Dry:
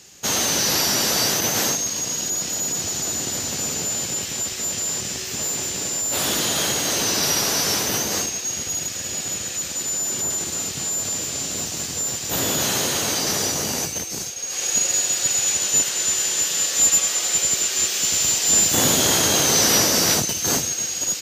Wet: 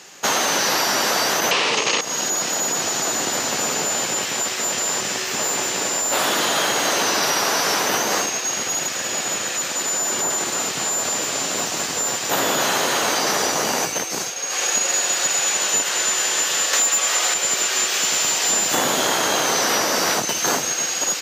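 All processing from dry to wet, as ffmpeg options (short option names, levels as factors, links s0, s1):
-filter_complex "[0:a]asettb=1/sr,asplit=3[s0][s1][s2];[s0]atrim=end=1.514[s3];[s1]atrim=start=1.51:end=2.01,asetpts=PTS-STARTPTS,afade=t=in:d=0.004:c=qsin,afade=t=out:st=0.496:d=0.004:c=qsin,aeval=exprs='0.355*sin(PI/2*7.94*val(0)/0.355)':c=same,highpass=140,equalizer=f=440:t=q:w=4:g=6,equalizer=f=730:t=q:w=4:g=-4,equalizer=f=1500:t=q:w=4:g=-8,equalizer=f=2800:t=q:w=4:g=6,lowpass=f=6000:w=0.5412,lowpass=f=6000:w=1.3066[s4];[s2]atrim=start=2.006[s5];[s3][s4]acrossfade=d=0.004:c1=hsin:c2=qsin[s6];[s6][s5]acrossfade=d=0.004:c1=qsin:c2=hsin,asettb=1/sr,asplit=3[s7][s8][s9];[s7]atrim=end=16.734[s10];[s8]atrim=start=16.73:end=17.34,asetpts=PTS-STARTPTS,afade=t=in:d=0.004:c=qsin,afade=t=out:st=0.606:d=0.004:c=qsin,lowshelf=f=200:g=-6,acontrast=82[s11];[s9]atrim=start=17.336[s12];[s10][s11]acrossfade=d=0.004:c1=hsin:c2=qsin[s13];[s13][s12]acrossfade=d=0.004:c1=qsin:c2=hsin,highpass=160,equalizer=f=1100:t=o:w=2.9:g=12.5,acompressor=threshold=0.158:ratio=10"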